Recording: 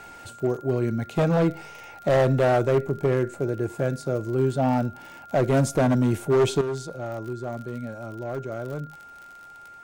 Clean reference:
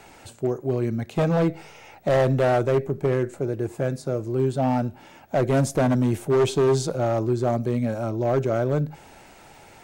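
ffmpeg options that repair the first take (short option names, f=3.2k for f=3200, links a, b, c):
-af "adeclick=t=4,bandreject=f=1.4k:w=30,asetnsamples=n=441:p=0,asendcmd='6.61 volume volume 9.5dB',volume=0dB"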